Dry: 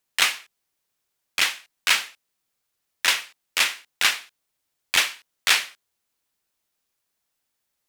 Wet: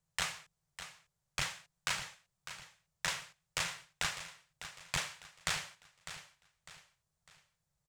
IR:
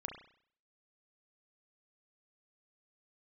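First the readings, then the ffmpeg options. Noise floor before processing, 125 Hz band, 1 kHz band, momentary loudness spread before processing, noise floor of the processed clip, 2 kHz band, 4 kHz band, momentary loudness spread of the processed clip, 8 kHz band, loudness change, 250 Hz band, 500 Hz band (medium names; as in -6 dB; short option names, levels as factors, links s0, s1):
-79 dBFS, no reading, -11.0 dB, 11 LU, -85 dBFS, -15.5 dB, -16.5 dB, 15 LU, -13.0 dB, -17.0 dB, -4.5 dB, -8.5 dB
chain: -filter_complex "[0:a]firequalizer=gain_entry='entry(110,0);entry(160,5);entry(230,-23);entry(530,-14);entry(2500,-24);entry(7400,-17);entry(12000,-27)':delay=0.05:min_phase=1,acompressor=threshold=0.00708:ratio=6,asplit=2[s0][s1];[s1]aecho=0:1:602|1204|1806|2408:0.251|0.098|0.0382|0.0149[s2];[s0][s2]amix=inputs=2:normalize=0,volume=3.76"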